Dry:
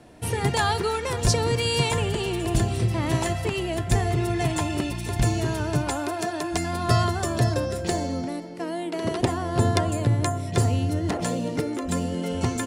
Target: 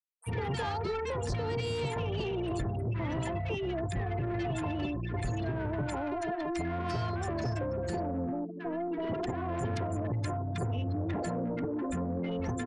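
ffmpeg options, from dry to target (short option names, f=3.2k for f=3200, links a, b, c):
-filter_complex "[0:a]afftfilt=real='re*gte(hypot(re,im),0.0501)':imag='im*gte(hypot(re,im),0.0501)':win_size=1024:overlap=0.75,equalizer=f=1.7k:w=0.74:g=4,acrossover=split=1300|2900|6200[a][b][c][d];[a]acompressor=threshold=-25dB:ratio=4[e];[b]acompressor=threshold=-43dB:ratio=4[f];[c]acompressor=threshold=-48dB:ratio=4[g];[d]acompressor=threshold=-52dB:ratio=4[h];[e][f][g][h]amix=inputs=4:normalize=0,asoftclip=type=tanh:threshold=-26.5dB,acrossover=split=1200[i][j];[i]adelay=50[k];[k][j]amix=inputs=2:normalize=0,aresample=22050,aresample=44100,volume=-1dB"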